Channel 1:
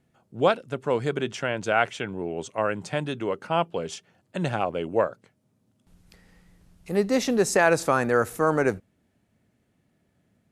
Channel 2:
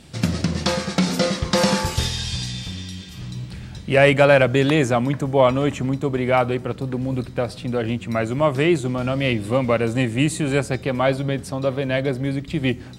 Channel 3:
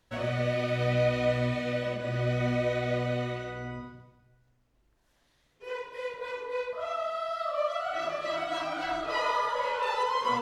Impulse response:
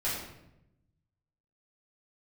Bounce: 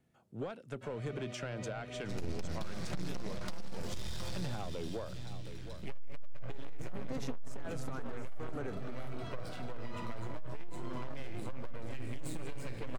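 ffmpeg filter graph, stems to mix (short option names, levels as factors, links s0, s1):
-filter_complex "[0:a]acompressor=threshold=0.0708:ratio=6,asoftclip=type=tanh:threshold=0.1,volume=0.531,asplit=2[s0][s1];[s1]volume=0.15[s2];[1:a]aeval=exprs='max(val(0),0)':c=same,adelay=1950,volume=0.251,asplit=3[s3][s4][s5];[s4]volume=0.316[s6];[s5]volume=0.398[s7];[2:a]adelay=700,volume=0.168[s8];[3:a]atrim=start_sample=2205[s9];[s6][s9]afir=irnorm=-1:irlink=0[s10];[s2][s7]amix=inputs=2:normalize=0,aecho=0:1:716:1[s11];[s0][s3][s8][s10][s11]amix=inputs=5:normalize=0,acrossover=split=280[s12][s13];[s13]acompressor=threshold=0.0126:ratio=10[s14];[s12][s14]amix=inputs=2:normalize=0,asoftclip=type=tanh:threshold=0.0355"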